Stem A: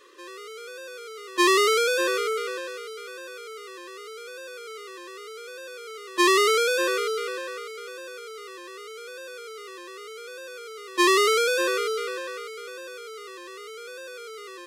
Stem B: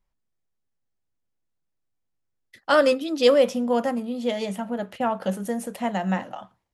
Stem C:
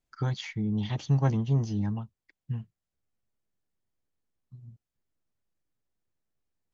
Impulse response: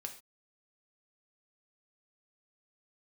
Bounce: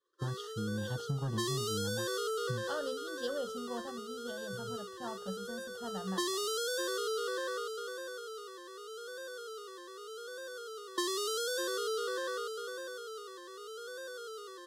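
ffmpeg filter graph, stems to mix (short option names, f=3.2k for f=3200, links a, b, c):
-filter_complex "[0:a]acrossover=split=300|3000[a][b][c];[b]acompressor=threshold=-29dB:ratio=6[d];[a][d][c]amix=inputs=3:normalize=0,volume=0dB[e];[1:a]asubboost=boost=6:cutoff=130,volume=-16dB[f];[2:a]dynaudnorm=f=820:g=3:m=7dB,asoftclip=type=tanh:threshold=-13dB,volume=-6.5dB[g];[e][f][g]amix=inputs=3:normalize=0,agate=range=-33dB:threshold=-35dB:ratio=3:detection=peak,asuperstop=centerf=2300:order=8:qfactor=2.1,acompressor=threshold=-32dB:ratio=6"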